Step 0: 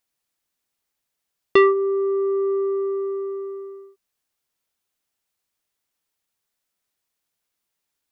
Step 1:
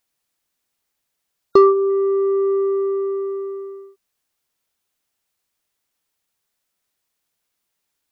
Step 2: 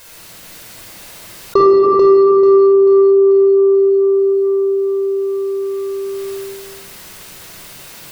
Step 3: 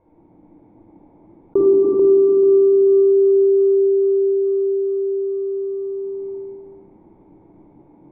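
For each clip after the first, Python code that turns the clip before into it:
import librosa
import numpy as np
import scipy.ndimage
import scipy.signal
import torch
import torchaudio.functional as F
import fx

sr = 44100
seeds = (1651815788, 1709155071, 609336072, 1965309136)

y1 = fx.spec_box(x, sr, start_s=1.51, length_s=0.39, low_hz=1400.0, high_hz=3800.0, gain_db=-22)
y1 = y1 * 10.0 ** (3.5 / 20.0)
y2 = fx.echo_feedback(y1, sr, ms=439, feedback_pct=44, wet_db=-4.0)
y2 = fx.room_shoebox(y2, sr, seeds[0], volume_m3=2700.0, walls='mixed', distance_m=5.2)
y2 = fx.env_flatten(y2, sr, amount_pct=70)
y2 = y2 * 10.0 ** (-7.0 / 20.0)
y3 = fx.formant_cascade(y2, sr, vowel='u')
y3 = y3 * 10.0 ** (6.5 / 20.0)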